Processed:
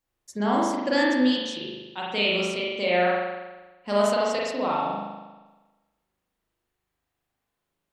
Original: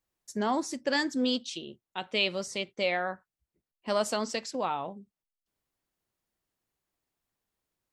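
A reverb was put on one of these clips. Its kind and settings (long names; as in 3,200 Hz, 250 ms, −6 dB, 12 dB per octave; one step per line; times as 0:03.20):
spring reverb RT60 1.2 s, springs 39 ms, chirp 30 ms, DRR −5 dB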